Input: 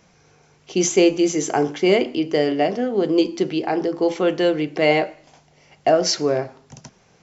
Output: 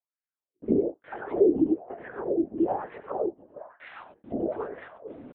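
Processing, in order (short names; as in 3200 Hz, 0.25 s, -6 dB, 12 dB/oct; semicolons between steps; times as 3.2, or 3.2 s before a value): delta modulation 64 kbps, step -33.5 dBFS; treble ducked by the level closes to 440 Hz, closed at -14.5 dBFS; comb 7.2 ms, depth 36%; in parallel at -2 dB: compressor 5:1, threshold -28 dBFS, peak gain reduction 13.5 dB; on the sum: granular stretch 0.51×, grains 47 ms; step gate "...x.xxx.xx.xxx" 102 bpm -60 dB; tempo 0.69×; delay with a stepping band-pass 0.453 s, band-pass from 850 Hz, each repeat 0.7 oct, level -10 dB; on a send at -6 dB: reverb RT60 0.20 s, pre-delay 83 ms; on the sum: LPC vocoder at 8 kHz whisper; wah 1.1 Hz 260–1900 Hz, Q 3.6; gain +2.5 dB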